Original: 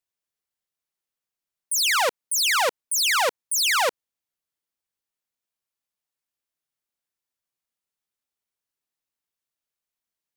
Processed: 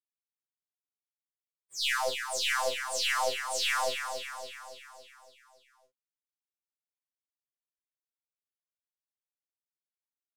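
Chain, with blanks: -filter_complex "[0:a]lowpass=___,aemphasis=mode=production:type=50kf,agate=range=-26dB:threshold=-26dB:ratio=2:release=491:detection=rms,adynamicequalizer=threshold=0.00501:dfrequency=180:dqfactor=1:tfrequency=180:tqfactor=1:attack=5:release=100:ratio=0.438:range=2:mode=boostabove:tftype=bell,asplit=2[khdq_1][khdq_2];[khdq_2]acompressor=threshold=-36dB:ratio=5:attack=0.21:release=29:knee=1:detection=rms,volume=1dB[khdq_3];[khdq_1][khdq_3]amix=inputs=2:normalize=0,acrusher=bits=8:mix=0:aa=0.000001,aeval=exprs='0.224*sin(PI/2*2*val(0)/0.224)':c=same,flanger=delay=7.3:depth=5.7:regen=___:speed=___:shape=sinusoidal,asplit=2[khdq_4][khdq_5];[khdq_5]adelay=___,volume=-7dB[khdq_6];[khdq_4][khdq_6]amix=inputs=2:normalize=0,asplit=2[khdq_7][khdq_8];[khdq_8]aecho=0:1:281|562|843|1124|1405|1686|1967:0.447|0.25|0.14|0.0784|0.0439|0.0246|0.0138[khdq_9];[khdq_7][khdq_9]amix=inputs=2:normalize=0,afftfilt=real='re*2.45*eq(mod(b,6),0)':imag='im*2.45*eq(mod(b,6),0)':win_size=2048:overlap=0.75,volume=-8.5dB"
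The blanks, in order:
2.7k, -60, 0.99, 34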